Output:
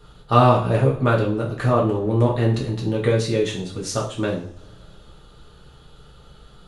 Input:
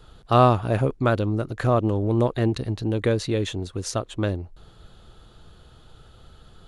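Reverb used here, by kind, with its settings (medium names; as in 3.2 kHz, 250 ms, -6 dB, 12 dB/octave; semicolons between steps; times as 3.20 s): two-slope reverb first 0.43 s, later 2.7 s, from -27 dB, DRR -4 dB; trim -2 dB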